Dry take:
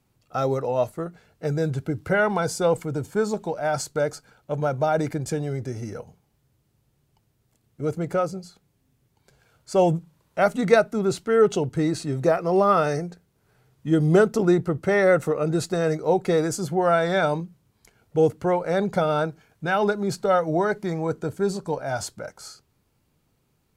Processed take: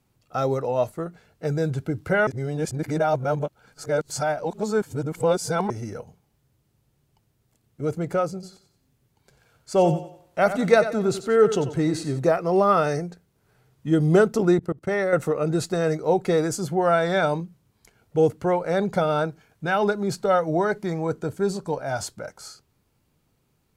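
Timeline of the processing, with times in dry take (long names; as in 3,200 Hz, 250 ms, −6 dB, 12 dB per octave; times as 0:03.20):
0:02.27–0:05.70: reverse
0:08.31–0:12.19: feedback echo with a high-pass in the loop 91 ms, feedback 39%, high-pass 200 Hz, level −11 dB
0:14.59–0:15.13: output level in coarse steps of 23 dB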